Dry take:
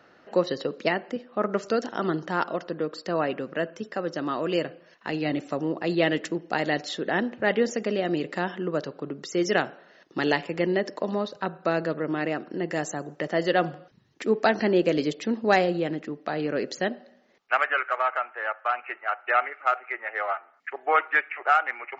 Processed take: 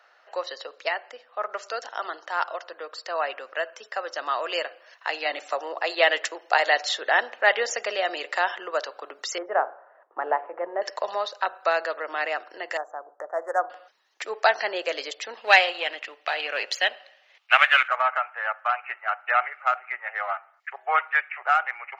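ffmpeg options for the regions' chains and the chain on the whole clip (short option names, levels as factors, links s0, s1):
-filter_complex "[0:a]asettb=1/sr,asplit=3[s0][s1][s2];[s0]atrim=end=5.544[s3];[s1]atrim=start=5.54:end=6.92,asetpts=PTS-STARTPTS,afade=t=in:d=0.004:c=qsin,afade=t=out:st=1.376:d=0.004:c=qsin,highpass=380,lowshelf=f=480:g=5[s4];[s2]atrim=start=6.916[s5];[s3][s4]acrossfade=d=0.004:c1=hsin:c2=qsin[s6];[s6][s5]acrossfade=d=0.004:c1=qsin:c2=hsin,asettb=1/sr,asplit=3[s7][s8][s9];[s7]atrim=end=9.384[s10];[s8]atrim=start=9.38:end=10.82,asetpts=PTS-STARTPTS,afade=t=in:d=0.004:c=qsin,afade=t=out:st=1.436:d=0.004:c=qsin,lowpass=f=1200:w=0.5412,lowpass=f=1200:w=1.3066,bandreject=f=60:t=h:w=6,bandreject=f=120:t=h:w=6,bandreject=f=180:t=h:w=6,bandreject=f=240:t=h:w=6,bandreject=f=300:t=h:w=6,bandreject=f=360:t=h:w=6,bandreject=f=420:t=h:w=6,bandreject=f=480:t=h:w=6,bandreject=f=540:t=h:w=6[s11];[s9]atrim=start=10.816[s12];[s10][s11]acrossfade=d=0.004:c1=hsin:c2=qsin[s13];[s13][s12]acrossfade=d=0.004:c1=qsin:c2=hsin,asettb=1/sr,asplit=3[s14][s15][s16];[s14]atrim=end=12.774[s17];[s15]atrim=start=12.77:end=13.7,asetpts=PTS-STARTPTS,afade=t=in:d=0.004:c=qsin,afade=t=out:st=0.926:d=0.004:c=qsin,lowshelf=f=280:g=-9,adynamicsmooth=sensitivity=1:basefreq=1100,asuperstop=centerf=3300:order=8:qfactor=0.62[s18];[s16]atrim=start=13.696[s19];[s17][s18]acrossfade=d=0.004:c1=hsin:c2=qsin[s20];[s20][s19]acrossfade=d=0.004:c1=qsin:c2=hsin,asettb=1/sr,asplit=3[s21][s22][s23];[s21]atrim=end=15.374[s24];[s22]atrim=start=15.37:end=17.88,asetpts=PTS-STARTPTS,afade=t=in:d=0.004:c=qsin,afade=t=out:st=2.506:d=0.004:c=qsin,aeval=exprs='if(lt(val(0),0),0.708*val(0),val(0))':c=same,equalizer=f=2800:t=o:w=1.1:g=13.5[s25];[s23]atrim=start=17.876[s26];[s24][s25]acrossfade=d=0.004:c1=hsin:c2=qsin[s27];[s27][s26]acrossfade=d=0.004:c1=qsin:c2=hsin,dynaudnorm=f=470:g=17:m=3.76,highpass=f=650:w=0.5412,highpass=f=650:w=1.3066"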